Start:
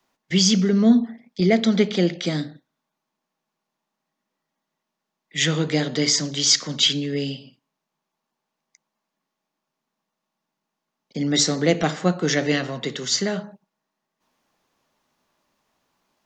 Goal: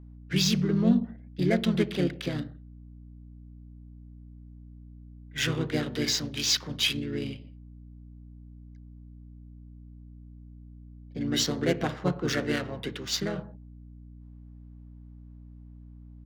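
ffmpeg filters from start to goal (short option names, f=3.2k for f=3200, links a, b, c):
-filter_complex "[0:a]adynamicsmooth=sensitivity=3.5:basefreq=2.2k,asplit=2[a][b];[b]asetrate=35002,aresample=44100,atempo=1.25992,volume=-3dB[c];[a][c]amix=inputs=2:normalize=0,aeval=exprs='val(0)+0.0141*(sin(2*PI*60*n/s)+sin(2*PI*2*60*n/s)/2+sin(2*PI*3*60*n/s)/3+sin(2*PI*4*60*n/s)/4+sin(2*PI*5*60*n/s)/5)':c=same,volume=-8.5dB"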